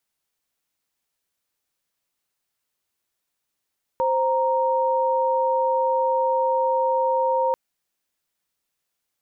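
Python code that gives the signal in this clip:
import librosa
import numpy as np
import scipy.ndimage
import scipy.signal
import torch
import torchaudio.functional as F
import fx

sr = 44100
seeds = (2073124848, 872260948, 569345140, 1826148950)

y = fx.chord(sr, length_s=3.54, notes=(72, 82), wave='sine', level_db=-21.0)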